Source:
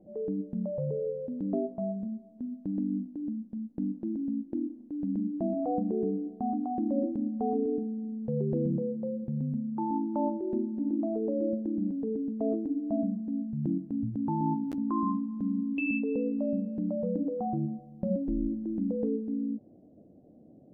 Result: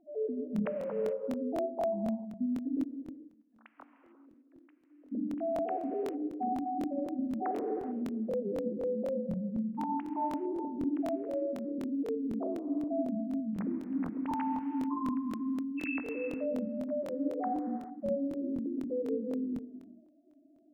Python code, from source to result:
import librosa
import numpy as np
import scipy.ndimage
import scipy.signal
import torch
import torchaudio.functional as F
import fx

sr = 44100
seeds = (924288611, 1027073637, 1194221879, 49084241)

y = fx.sine_speech(x, sr)
y = fx.highpass(y, sr, hz=1500.0, slope=12, at=(2.81, 5.11), fade=0.02)
y = fx.rider(y, sr, range_db=10, speed_s=0.5)
y = fx.echo_feedback(y, sr, ms=134, feedback_pct=41, wet_db=-18)
y = fx.rev_gated(y, sr, seeds[0], gate_ms=470, shape='flat', drr_db=6.5)
y = fx.buffer_crackle(y, sr, first_s=0.54, period_s=0.25, block=1024, kind='repeat')
y = y * librosa.db_to_amplitude(-4.0)